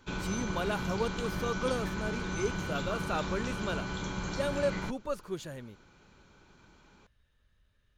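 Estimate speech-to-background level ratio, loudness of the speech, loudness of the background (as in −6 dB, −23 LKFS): 0.0 dB, −36.0 LKFS, −36.0 LKFS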